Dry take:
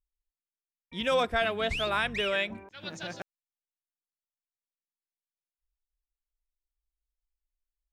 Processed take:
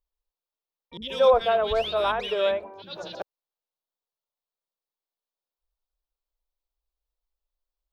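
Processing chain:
graphic EQ with 10 bands 125 Hz −8 dB, 250 Hz −4 dB, 500 Hz +9 dB, 1,000 Hz +6 dB, 2,000 Hz −9 dB, 4,000 Hz +6 dB, 8,000 Hz −11 dB
0:00.97–0:03.15: three-band delay without the direct sound lows, highs, mids 50/130 ms, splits 290/2,000 Hz
level +1.5 dB

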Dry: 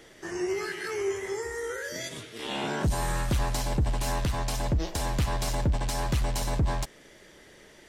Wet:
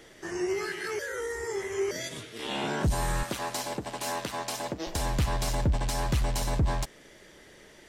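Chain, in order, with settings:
0:00.99–0:01.91: reverse
0:03.23–0:04.87: high-pass filter 280 Hz 12 dB per octave

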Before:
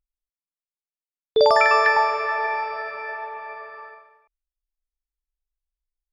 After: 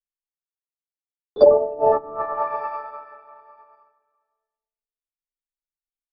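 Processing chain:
0:01.64–0:03.73: high-shelf EQ 6,000 Hz −10.5 dB
far-end echo of a speakerphone 350 ms, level −9 dB
0:01.53–0:01.92: gain on a spectral selection 890–2,600 Hz −25 dB
notch filter 930 Hz, Q 21
convolution reverb RT60 0.80 s, pre-delay 3 ms, DRR −8 dB
treble cut that deepens with the level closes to 370 Hz, closed at −6.5 dBFS
octave-band graphic EQ 250/1,000/2,000/8,000 Hz +7/+12/−10/−3 dB
expander for the loud parts 2.5 to 1, over −30 dBFS
level −1.5 dB

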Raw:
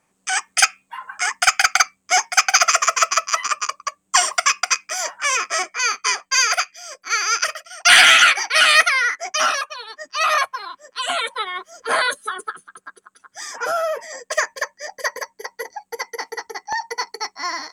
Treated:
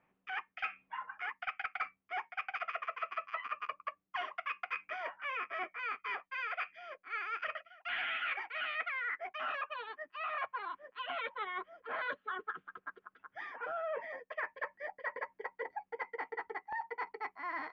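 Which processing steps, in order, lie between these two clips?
Butterworth low-pass 2,900 Hz 36 dB per octave
reversed playback
downward compressor 6 to 1, threshold −30 dBFS, peak gain reduction 20.5 dB
reversed playback
level −6.5 dB

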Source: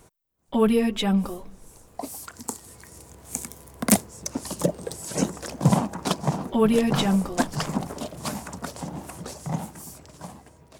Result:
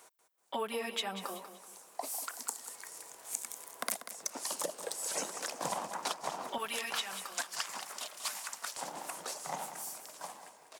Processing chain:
high-pass filter 700 Hz 12 dB per octave, from 0:06.58 1,500 Hz, from 0:08.77 690 Hz
downward compressor 12 to 1, threshold −32 dBFS, peak gain reduction 18 dB
repeating echo 190 ms, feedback 35%, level −11 dB

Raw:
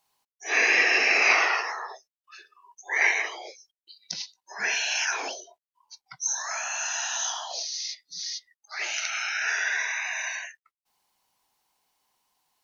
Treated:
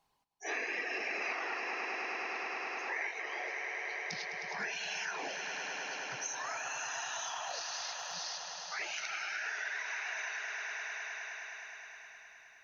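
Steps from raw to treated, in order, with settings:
high-shelf EQ 6,200 Hz −5 dB
reverb reduction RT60 0.54 s
spectral tilt −2 dB per octave
echo that builds up and dies away 104 ms, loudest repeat 5, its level −13 dB
0:06.16–0:08.28: surface crackle 72 per second −51 dBFS
downward compressor 5 to 1, threshold −36 dBFS, peak gain reduction 15.5 dB

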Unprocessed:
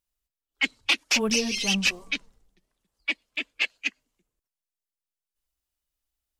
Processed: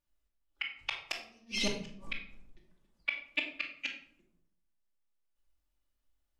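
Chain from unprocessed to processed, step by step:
high-shelf EQ 3,400 Hz −9.5 dB
gate with flip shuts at −19 dBFS, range −42 dB
rectangular room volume 950 cubic metres, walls furnished, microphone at 2.5 metres

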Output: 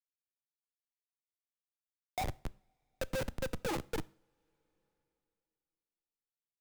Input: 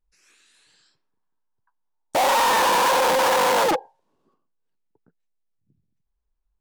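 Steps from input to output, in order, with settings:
spectral dynamics exaggerated over time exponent 3
octave-band graphic EQ 125/1,000/2,000 Hz +7/−9/−5 dB
in parallel at −2.5 dB: brickwall limiter −28 dBFS, peak gain reduction 9.5 dB
0:03.16–0:03.56: on the sum: parametric band 140 Hz −4.5 dB → +3 dB 1.8 octaves
noise gate −24 dBFS, range −18 dB
hum removal 68.53 Hz, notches 28
on a send: single-tap delay 263 ms −11 dB
on the sum: auto-filter low-pass saw down 4.8 Hz 950–4,200 Hz
comparator with hysteresis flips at −33.5 dBFS
coupled-rooms reverb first 0.42 s, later 2.8 s, from −28 dB, DRR 19 dB
multiband upward and downward compressor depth 40%
level +6.5 dB

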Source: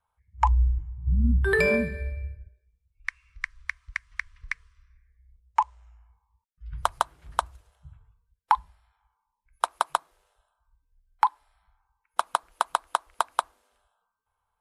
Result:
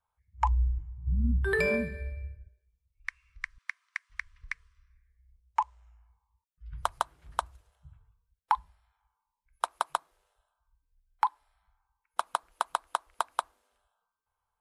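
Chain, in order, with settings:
0:03.58–0:04.10: high-pass filter 670 Hz 24 dB per octave
level −5 dB

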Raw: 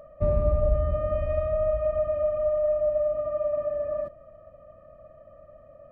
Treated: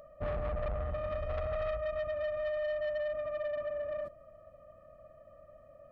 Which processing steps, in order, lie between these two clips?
0:01.29–0:01.74: low-shelf EQ 280 Hz +5.5 dB
soft clipping −25 dBFS, distortion −10 dB
high-shelf EQ 2,000 Hz +8.5 dB
level −6.5 dB

